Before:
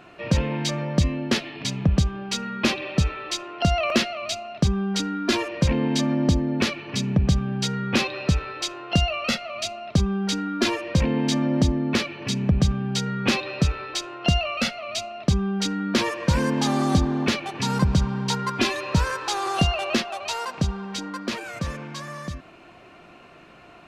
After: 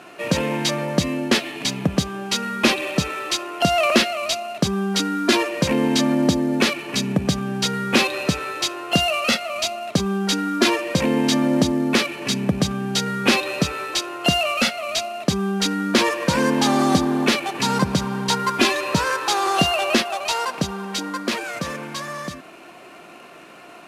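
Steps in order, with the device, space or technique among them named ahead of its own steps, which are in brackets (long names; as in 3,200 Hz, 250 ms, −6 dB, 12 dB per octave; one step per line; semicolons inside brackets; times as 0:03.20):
early wireless headset (high-pass filter 220 Hz 12 dB per octave; variable-slope delta modulation 64 kbit/s)
level +6 dB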